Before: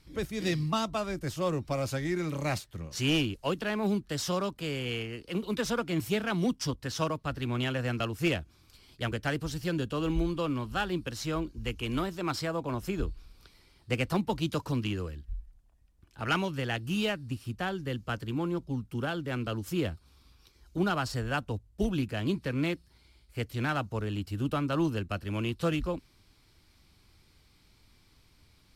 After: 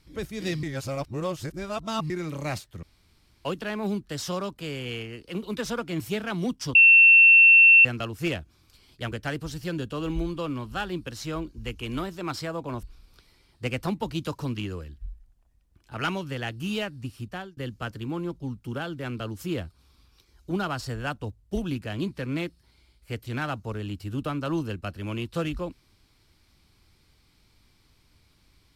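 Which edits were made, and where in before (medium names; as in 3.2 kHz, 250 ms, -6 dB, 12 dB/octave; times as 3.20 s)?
0.63–2.10 s: reverse
2.83–3.45 s: room tone
6.75–7.85 s: bleep 2.7 kHz -10.5 dBFS
12.83–13.10 s: delete
17.44–17.84 s: fade out equal-power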